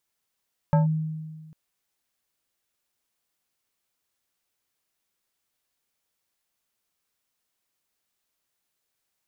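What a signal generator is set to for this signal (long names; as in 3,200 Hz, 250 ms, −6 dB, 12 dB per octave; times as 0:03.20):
two-operator FM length 0.80 s, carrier 157 Hz, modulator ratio 4.65, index 0.74, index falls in 0.14 s linear, decay 1.56 s, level −14.5 dB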